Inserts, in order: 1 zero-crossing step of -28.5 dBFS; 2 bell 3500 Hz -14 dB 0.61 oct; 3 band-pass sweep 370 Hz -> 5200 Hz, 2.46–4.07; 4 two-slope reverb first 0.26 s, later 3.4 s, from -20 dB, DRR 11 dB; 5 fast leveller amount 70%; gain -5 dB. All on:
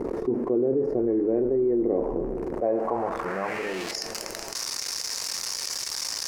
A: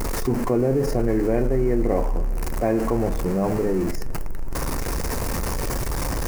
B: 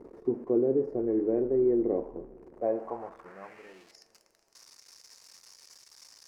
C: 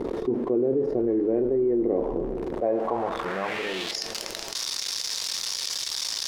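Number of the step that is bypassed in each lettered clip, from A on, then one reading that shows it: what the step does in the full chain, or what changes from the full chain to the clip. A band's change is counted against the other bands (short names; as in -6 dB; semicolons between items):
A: 3, 125 Hz band +14.0 dB; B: 5, momentary loudness spread change +14 LU; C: 2, 4 kHz band +3.0 dB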